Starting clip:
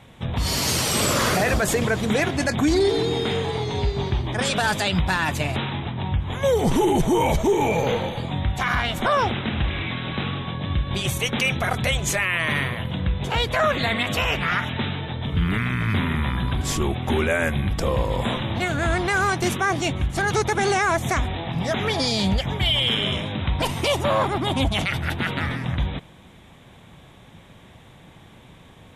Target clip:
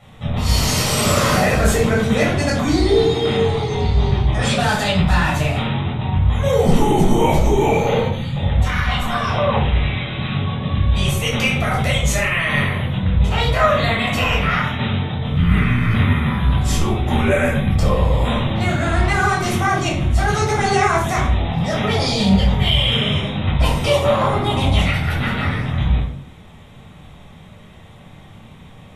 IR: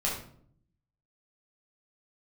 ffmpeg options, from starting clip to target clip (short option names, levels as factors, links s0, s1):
-filter_complex "[0:a]asettb=1/sr,asplit=3[s0][s1][s2];[s0]atrim=end=8.074[s3];[s1]atrim=start=8.07:end=10.35,asetpts=PTS-STARTPTS,afade=t=in:d=0.004:c=qsin,afade=t=out:st=2.276:d=0.004:c=qsin,acrossover=split=290|1100[s4][s5][s6];[s6]adelay=50[s7];[s5]adelay=290[s8];[s4][s8][s7]amix=inputs=3:normalize=0,atrim=end_sample=100548[s9];[s2]atrim=start=10.346[s10];[s3][s9]acrossfade=d=0.004:c1=hsin:c2=qsin[s11];[s11][s10]acrossfade=d=0.004:c1=qsin:c2=hsin[s12];[1:a]atrim=start_sample=2205,afade=t=out:st=0.39:d=0.01,atrim=end_sample=17640[s13];[s12][s13]afir=irnorm=-1:irlink=0,volume=0.668"